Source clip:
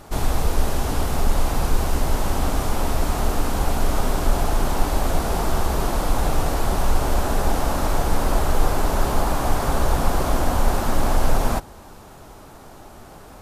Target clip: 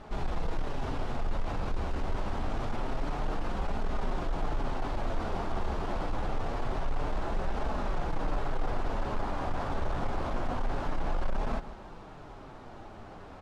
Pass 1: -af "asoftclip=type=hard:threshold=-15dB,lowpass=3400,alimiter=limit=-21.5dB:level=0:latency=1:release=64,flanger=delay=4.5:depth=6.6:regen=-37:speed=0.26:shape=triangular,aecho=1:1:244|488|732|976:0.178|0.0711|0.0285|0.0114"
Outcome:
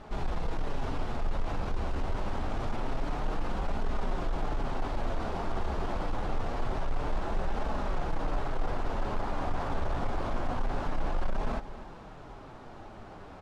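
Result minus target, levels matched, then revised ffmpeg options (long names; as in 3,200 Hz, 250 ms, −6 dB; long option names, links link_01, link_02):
echo 89 ms late
-af "asoftclip=type=hard:threshold=-15dB,lowpass=3400,alimiter=limit=-21.5dB:level=0:latency=1:release=64,flanger=delay=4.5:depth=6.6:regen=-37:speed=0.26:shape=triangular,aecho=1:1:155|310|465|620:0.178|0.0711|0.0285|0.0114"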